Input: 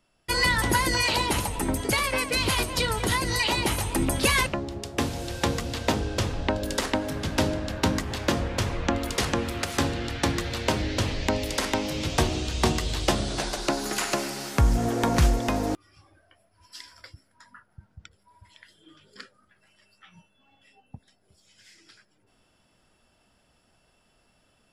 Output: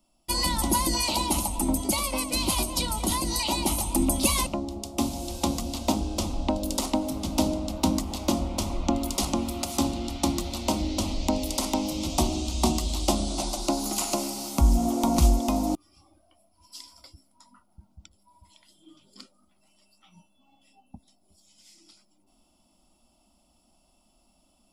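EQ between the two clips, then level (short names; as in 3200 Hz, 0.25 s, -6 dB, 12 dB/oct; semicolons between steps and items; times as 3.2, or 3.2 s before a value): tilt shelf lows +4 dB, about 890 Hz; high shelf 4800 Hz +10 dB; fixed phaser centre 450 Hz, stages 6; 0.0 dB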